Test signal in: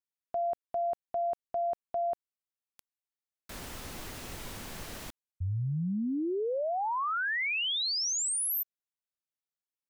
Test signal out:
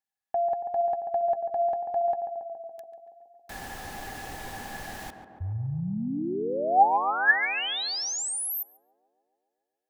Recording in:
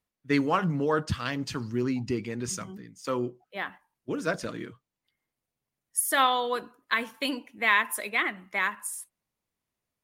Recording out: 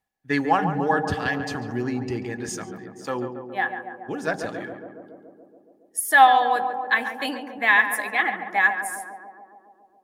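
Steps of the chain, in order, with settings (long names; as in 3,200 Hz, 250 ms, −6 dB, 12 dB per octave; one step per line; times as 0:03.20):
hollow resonant body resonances 790/1,700 Hz, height 18 dB, ringing for 55 ms
tape delay 140 ms, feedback 84%, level −6 dB, low-pass 1,200 Hz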